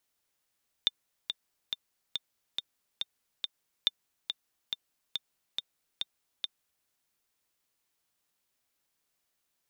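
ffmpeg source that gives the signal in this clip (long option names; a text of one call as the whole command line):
ffmpeg -f lavfi -i "aevalsrc='pow(10,(-11-7.5*gte(mod(t,7*60/140),60/140))/20)*sin(2*PI*3600*mod(t,60/140))*exp(-6.91*mod(t,60/140)/0.03)':duration=6:sample_rate=44100" out.wav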